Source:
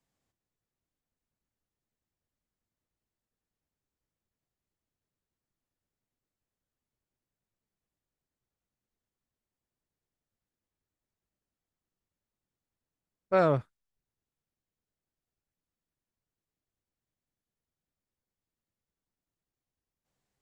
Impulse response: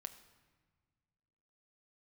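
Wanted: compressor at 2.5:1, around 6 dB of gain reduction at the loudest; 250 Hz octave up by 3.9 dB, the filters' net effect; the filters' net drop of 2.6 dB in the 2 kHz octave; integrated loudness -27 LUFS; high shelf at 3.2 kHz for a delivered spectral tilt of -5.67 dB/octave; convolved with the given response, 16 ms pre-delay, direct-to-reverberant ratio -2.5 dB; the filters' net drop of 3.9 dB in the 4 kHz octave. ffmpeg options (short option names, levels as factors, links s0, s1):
-filter_complex "[0:a]equalizer=f=250:t=o:g=6.5,equalizer=f=2000:t=o:g=-4.5,highshelf=f=3200:g=6,equalizer=f=4000:t=o:g=-7.5,acompressor=threshold=0.0501:ratio=2.5,asplit=2[s0][s1];[1:a]atrim=start_sample=2205,adelay=16[s2];[s1][s2]afir=irnorm=-1:irlink=0,volume=2.11[s3];[s0][s3]amix=inputs=2:normalize=0,volume=0.944"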